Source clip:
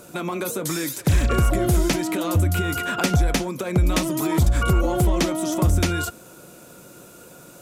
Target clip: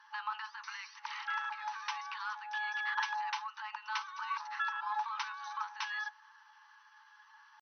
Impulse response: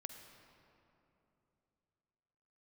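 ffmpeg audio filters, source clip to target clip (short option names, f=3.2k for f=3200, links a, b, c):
-af "afftfilt=real='re*between(b*sr/4096,700,5200)':imag='im*between(b*sr/4096,700,5200)':win_size=4096:overlap=0.75,asetrate=52444,aresample=44100,atempo=0.840896,tiltshelf=f=1.3k:g=10,volume=-6dB"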